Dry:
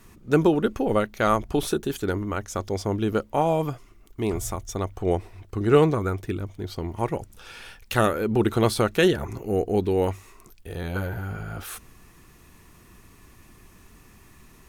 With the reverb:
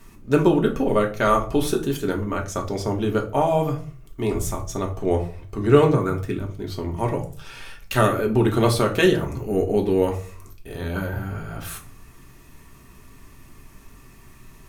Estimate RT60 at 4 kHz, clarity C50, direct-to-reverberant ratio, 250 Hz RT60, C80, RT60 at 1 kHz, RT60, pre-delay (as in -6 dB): 0.25 s, 12.0 dB, 1.0 dB, 0.55 s, 17.0 dB, 0.35 s, 0.40 s, 3 ms